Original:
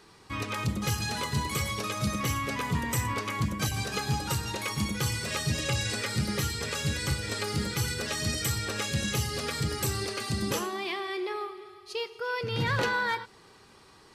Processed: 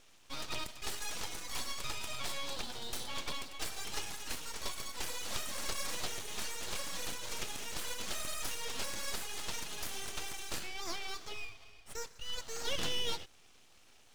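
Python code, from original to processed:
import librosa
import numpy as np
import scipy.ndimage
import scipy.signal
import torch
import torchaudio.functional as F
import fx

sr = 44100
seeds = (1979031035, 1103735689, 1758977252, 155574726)

y = fx.brickwall_bandpass(x, sr, low_hz=1100.0, high_hz=11000.0)
y = fx.air_absorb(y, sr, metres=64.0)
y = np.abs(y)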